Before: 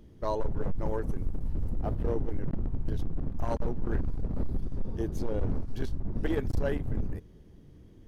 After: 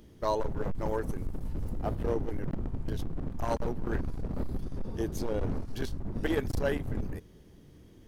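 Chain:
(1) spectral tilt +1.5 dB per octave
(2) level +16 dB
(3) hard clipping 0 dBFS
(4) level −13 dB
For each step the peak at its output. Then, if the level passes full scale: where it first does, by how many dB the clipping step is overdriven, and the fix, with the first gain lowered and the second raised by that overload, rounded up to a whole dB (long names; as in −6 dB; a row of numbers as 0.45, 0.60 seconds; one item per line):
−19.5, −3.5, −3.5, −16.5 dBFS
no step passes full scale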